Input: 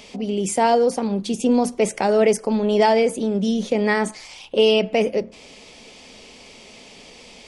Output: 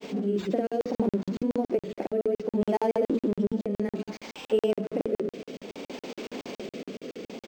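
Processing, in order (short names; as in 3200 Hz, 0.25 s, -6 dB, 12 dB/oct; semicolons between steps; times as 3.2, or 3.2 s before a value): zero-crossing step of -26.5 dBFS; HPF 140 Hz 24 dB/oct; bell 330 Hz +14.5 dB 2.1 oct; notches 60/120/180/240/300/360/420/480 Hz; compressor, threshold -10 dBFS, peak gain reduction 10 dB; rotary speaker horn 0.6 Hz; echo 0.716 s -23 dB; grains, pitch spread up and down by 0 st; crackling interface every 0.14 s, samples 2048, zero, from 0.67; decimation joined by straight lines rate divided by 4×; gain -9 dB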